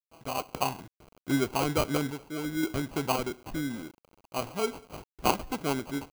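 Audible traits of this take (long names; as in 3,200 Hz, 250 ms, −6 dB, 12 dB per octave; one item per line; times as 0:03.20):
a quantiser's noise floor 8 bits, dither none
sample-and-hold tremolo 1.9 Hz
aliases and images of a low sample rate 1,800 Hz, jitter 0%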